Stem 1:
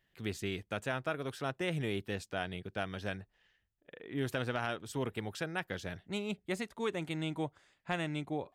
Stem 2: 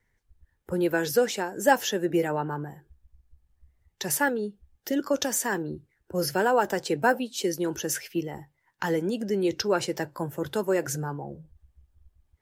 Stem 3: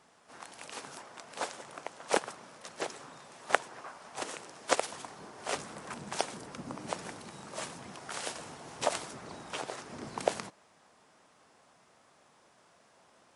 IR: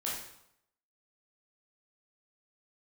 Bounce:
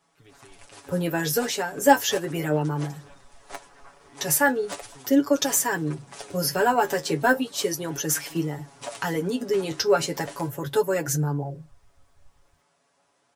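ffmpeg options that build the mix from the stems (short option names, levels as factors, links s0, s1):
-filter_complex "[0:a]acompressor=threshold=0.01:ratio=6,volume=0.398[s0];[1:a]acontrast=50,adelay=200,volume=0.841[s1];[2:a]volume=11.2,asoftclip=hard,volume=0.0891,volume=0.668[s2];[s0][s1][s2]amix=inputs=3:normalize=0,highshelf=f=6800:g=4.5,aecho=1:1:7.1:0.84,flanger=delay=6.1:depth=6.7:regen=46:speed=0.36:shape=sinusoidal"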